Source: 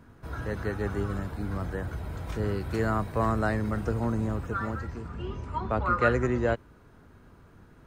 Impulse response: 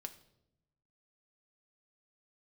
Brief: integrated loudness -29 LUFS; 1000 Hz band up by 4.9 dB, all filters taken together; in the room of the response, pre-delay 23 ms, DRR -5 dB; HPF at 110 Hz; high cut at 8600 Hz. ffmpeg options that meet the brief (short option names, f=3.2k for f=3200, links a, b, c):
-filter_complex "[0:a]highpass=110,lowpass=8.6k,equalizer=f=1k:t=o:g=6.5,asplit=2[a][b];[1:a]atrim=start_sample=2205,adelay=23[c];[b][c]afir=irnorm=-1:irlink=0,volume=9dB[d];[a][d]amix=inputs=2:normalize=0,volume=-6.5dB"